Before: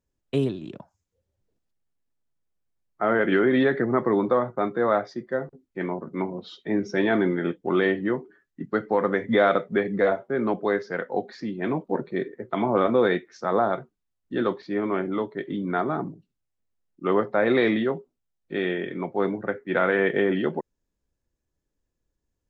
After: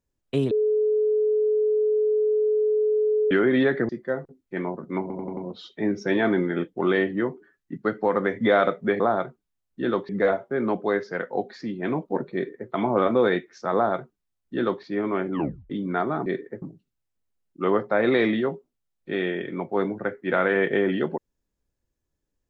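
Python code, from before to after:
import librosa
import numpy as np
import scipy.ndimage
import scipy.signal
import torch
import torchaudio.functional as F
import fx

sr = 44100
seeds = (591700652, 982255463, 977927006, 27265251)

y = fx.edit(x, sr, fx.bleep(start_s=0.51, length_s=2.8, hz=427.0, db=-18.5),
    fx.cut(start_s=3.89, length_s=1.24),
    fx.stutter(start_s=6.25, slice_s=0.09, count=5),
    fx.duplicate(start_s=12.13, length_s=0.36, to_s=16.05),
    fx.duplicate(start_s=13.53, length_s=1.09, to_s=9.88),
    fx.tape_stop(start_s=15.12, length_s=0.37), tone=tone)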